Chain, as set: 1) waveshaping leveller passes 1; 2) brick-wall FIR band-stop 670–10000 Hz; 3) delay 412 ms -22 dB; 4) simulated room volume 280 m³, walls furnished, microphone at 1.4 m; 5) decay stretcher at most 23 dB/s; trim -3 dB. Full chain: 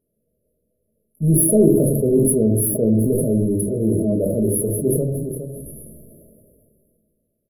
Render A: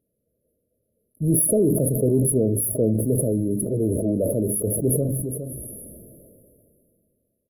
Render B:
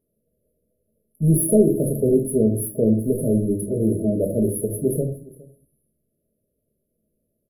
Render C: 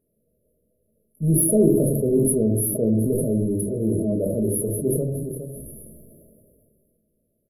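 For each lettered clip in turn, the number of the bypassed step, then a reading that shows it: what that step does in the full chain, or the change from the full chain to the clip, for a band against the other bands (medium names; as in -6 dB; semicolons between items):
4, crest factor change -3.5 dB; 5, momentary loudness spread change -6 LU; 1, loudness change -3.5 LU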